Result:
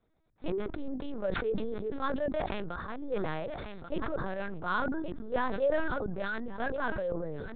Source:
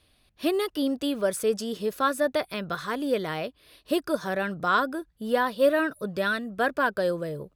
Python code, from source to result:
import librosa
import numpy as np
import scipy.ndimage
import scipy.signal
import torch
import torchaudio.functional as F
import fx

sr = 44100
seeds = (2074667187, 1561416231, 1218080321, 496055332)

p1 = fx.wiener(x, sr, points=15)
p2 = p1 + fx.echo_single(p1, sr, ms=1131, db=-20.5, dry=0)
p3 = fx.lpc_vocoder(p2, sr, seeds[0], excitation='pitch_kept', order=8)
p4 = fx.sustainer(p3, sr, db_per_s=21.0)
y = p4 * 10.0 ** (-8.0 / 20.0)